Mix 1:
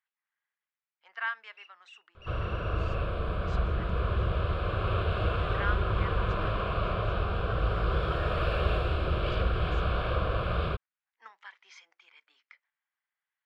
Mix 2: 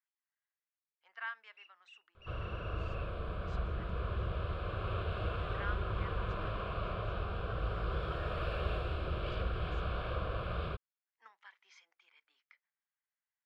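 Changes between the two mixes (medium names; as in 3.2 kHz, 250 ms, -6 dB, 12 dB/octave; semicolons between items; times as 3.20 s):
speech -8.5 dB; first sound: add tilt EQ -3.5 dB/octave; second sound -8.0 dB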